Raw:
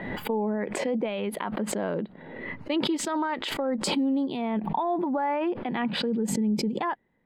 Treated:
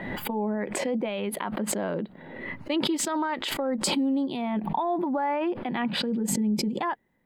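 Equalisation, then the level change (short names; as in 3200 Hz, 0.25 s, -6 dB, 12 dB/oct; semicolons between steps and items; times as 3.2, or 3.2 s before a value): high shelf 7600 Hz +9 dB; notch 450 Hz, Q 12; 0.0 dB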